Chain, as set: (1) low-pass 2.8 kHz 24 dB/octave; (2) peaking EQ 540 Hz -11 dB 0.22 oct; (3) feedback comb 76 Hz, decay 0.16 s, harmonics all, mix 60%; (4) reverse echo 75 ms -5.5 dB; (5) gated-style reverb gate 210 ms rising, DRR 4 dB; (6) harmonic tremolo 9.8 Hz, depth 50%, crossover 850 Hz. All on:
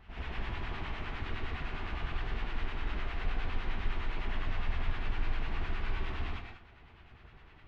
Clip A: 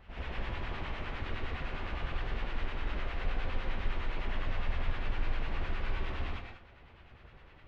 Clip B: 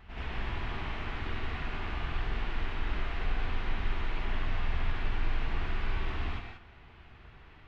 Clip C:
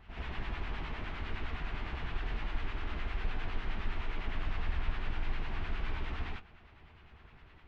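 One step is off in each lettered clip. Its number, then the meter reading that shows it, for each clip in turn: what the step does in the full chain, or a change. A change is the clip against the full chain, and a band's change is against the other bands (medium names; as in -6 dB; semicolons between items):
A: 2, 500 Hz band +2.5 dB; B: 6, loudness change +2.5 LU; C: 5, momentary loudness spread change +3 LU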